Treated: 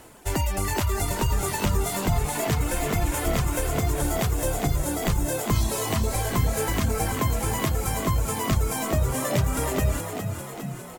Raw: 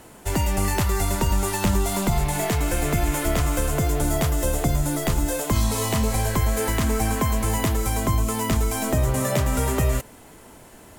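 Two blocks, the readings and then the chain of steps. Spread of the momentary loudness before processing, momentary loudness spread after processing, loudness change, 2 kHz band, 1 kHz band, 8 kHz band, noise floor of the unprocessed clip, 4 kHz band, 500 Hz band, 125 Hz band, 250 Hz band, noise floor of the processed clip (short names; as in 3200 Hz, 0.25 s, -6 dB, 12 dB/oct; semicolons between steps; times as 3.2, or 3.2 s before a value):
1 LU, 2 LU, -2.5 dB, -1.5 dB, -1.5 dB, -2.0 dB, -47 dBFS, -1.5 dB, -2.0 dB, -2.0 dB, -3.5 dB, -37 dBFS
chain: reverb removal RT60 0.92 s; bell 190 Hz -4.5 dB 0.79 oct; frequency-shifting echo 0.407 s, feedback 62%, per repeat +36 Hz, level -7.5 dB; crackle 160/s -44 dBFS; gain -1 dB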